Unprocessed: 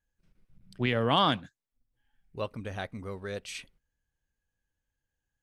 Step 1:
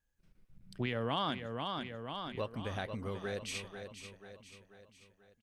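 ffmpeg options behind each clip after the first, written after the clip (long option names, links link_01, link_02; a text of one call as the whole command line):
ffmpeg -i in.wav -filter_complex "[0:a]asplit=2[link_01][link_02];[link_02]aecho=0:1:488|976|1464|1952|2440:0.299|0.146|0.0717|0.0351|0.0172[link_03];[link_01][link_03]amix=inputs=2:normalize=0,acompressor=threshold=-35dB:ratio=2.5" out.wav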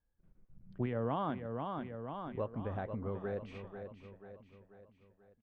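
ffmpeg -i in.wav -af "lowpass=1100,volume=1dB" out.wav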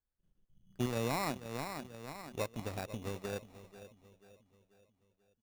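ffmpeg -i in.wav -af "acrusher=samples=14:mix=1:aa=0.000001,aeval=exprs='0.0708*(cos(1*acos(clip(val(0)/0.0708,-1,1)))-cos(1*PI/2))+0.00708*(cos(7*acos(clip(val(0)/0.0708,-1,1)))-cos(7*PI/2))':channel_layout=same,volume=1dB" out.wav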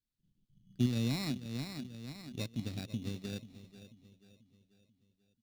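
ffmpeg -i in.wav -af "equalizer=frequency=125:width_type=o:width=1:gain=10,equalizer=frequency=250:width_type=o:width=1:gain=11,equalizer=frequency=500:width_type=o:width=1:gain=-5,equalizer=frequency=1000:width_type=o:width=1:gain=-10,equalizer=frequency=4000:width_type=o:width=1:gain=11,volume=-5.5dB" out.wav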